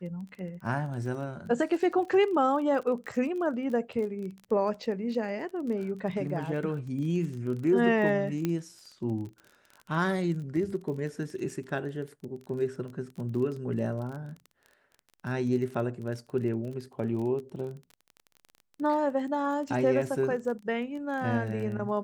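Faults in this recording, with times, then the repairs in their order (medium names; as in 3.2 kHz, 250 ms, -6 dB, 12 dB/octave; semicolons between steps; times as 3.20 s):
crackle 27 per s -37 dBFS
8.45 s: pop -16 dBFS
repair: de-click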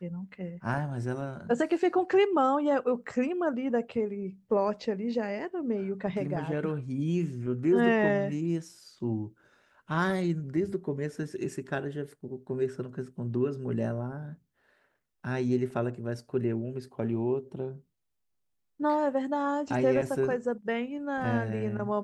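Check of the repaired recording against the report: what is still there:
nothing left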